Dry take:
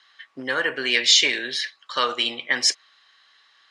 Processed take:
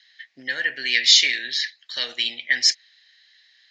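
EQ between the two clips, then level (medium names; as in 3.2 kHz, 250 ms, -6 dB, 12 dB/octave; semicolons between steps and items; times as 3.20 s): FFT filter 230 Hz 0 dB, 440 Hz -6 dB, 710 Hz -1 dB, 1.2 kHz -17 dB, 1.8 kHz +12 dB, 2.8 kHz +6 dB, 4.4 kHz +13 dB, 6.9 kHz +8 dB, 9.9 kHz -16 dB; -8.5 dB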